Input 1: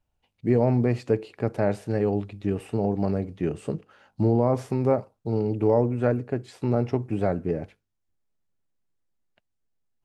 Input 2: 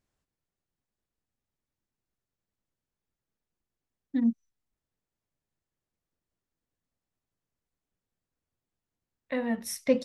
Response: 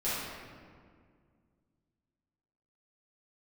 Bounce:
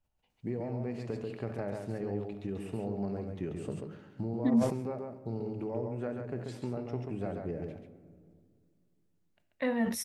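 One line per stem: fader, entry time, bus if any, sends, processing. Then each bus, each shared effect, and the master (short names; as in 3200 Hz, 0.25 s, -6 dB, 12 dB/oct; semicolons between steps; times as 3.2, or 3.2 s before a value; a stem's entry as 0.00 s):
-8.0 dB, 0.00 s, send -16.5 dB, echo send -4 dB, compressor 6:1, threshold -26 dBFS, peak gain reduction 10.5 dB
-0.5 dB, 0.30 s, no send, no echo send, dry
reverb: on, RT60 2.0 s, pre-delay 5 ms
echo: echo 0.137 s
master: sustainer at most 83 dB/s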